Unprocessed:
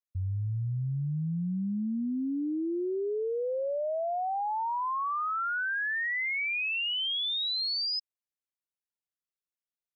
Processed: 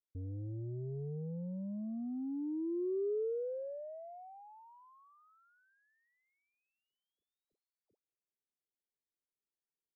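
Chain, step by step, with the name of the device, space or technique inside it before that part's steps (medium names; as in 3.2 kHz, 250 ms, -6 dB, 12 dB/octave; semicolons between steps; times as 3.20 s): overdriven synthesiser ladder filter (saturation -37 dBFS, distortion -12 dB; four-pole ladder low-pass 500 Hz, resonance 50%); trim +6 dB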